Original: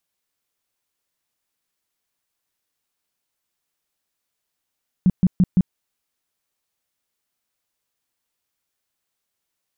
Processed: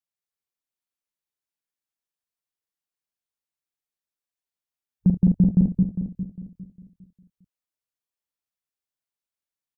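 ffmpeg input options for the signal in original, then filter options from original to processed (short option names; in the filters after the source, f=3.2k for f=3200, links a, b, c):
-f lavfi -i "aevalsrc='0.299*sin(2*PI*183*mod(t,0.17))*lt(mod(t,0.17),7/183)':d=0.68:s=44100"
-filter_complex "[0:a]asplit=2[a][b];[b]aecho=0:1:45|73|219:0.398|0.133|0.708[c];[a][c]amix=inputs=2:normalize=0,afwtdn=0.02,asplit=2[d][e];[e]adelay=404,lowpass=f=800:p=1,volume=-10dB,asplit=2[f][g];[g]adelay=404,lowpass=f=800:p=1,volume=0.34,asplit=2[h][i];[i]adelay=404,lowpass=f=800:p=1,volume=0.34,asplit=2[j][k];[k]adelay=404,lowpass=f=800:p=1,volume=0.34[l];[f][h][j][l]amix=inputs=4:normalize=0[m];[d][m]amix=inputs=2:normalize=0"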